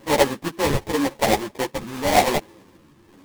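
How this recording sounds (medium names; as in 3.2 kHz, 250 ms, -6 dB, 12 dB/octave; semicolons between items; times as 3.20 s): phasing stages 6, 0.93 Hz, lowest notch 610–2200 Hz; aliases and images of a low sample rate 1.4 kHz, jitter 20%; a shimmering, thickened sound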